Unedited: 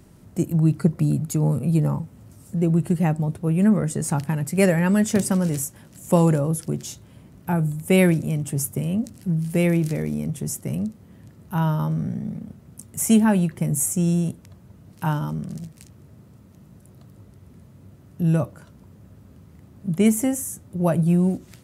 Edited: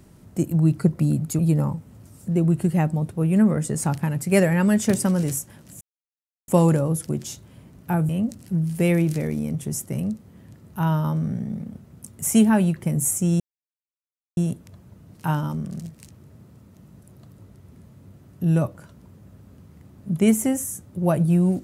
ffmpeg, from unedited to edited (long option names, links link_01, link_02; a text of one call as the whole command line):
ffmpeg -i in.wav -filter_complex "[0:a]asplit=5[link_01][link_02][link_03][link_04][link_05];[link_01]atrim=end=1.392[link_06];[link_02]atrim=start=1.648:end=6.07,asetpts=PTS-STARTPTS,afade=type=out:start_time=4.418:duration=0.004:curve=hsin,apad=pad_dur=0.67[link_07];[link_03]atrim=start=6.07:end=7.682,asetpts=PTS-STARTPTS,afade=type=in:duration=0.004:curve=hsin[link_08];[link_04]atrim=start=8.838:end=14.15,asetpts=PTS-STARTPTS,afade=type=out:start_time=5.308:duration=0.004:curve=hsin,apad=pad_dur=0.97[link_09];[link_05]atrim=start=14.15,asetpts=PTS-STARTPTS,afade=type=in:duration=0.004:curve=hsin[link_10];[link_07][link_08]concat=n=2:v=0:a=1[link_11];[link_06][link_11]acrossfade=duration=0.004:curve1=hsin:curve2=hsin[link_12];[link_09][link_10]concat=n=2:v=0:a=1[link_13];[link_12][link_13]acrossfade=duration=0.004:curve1=hsin:curve2=hsin" out.wav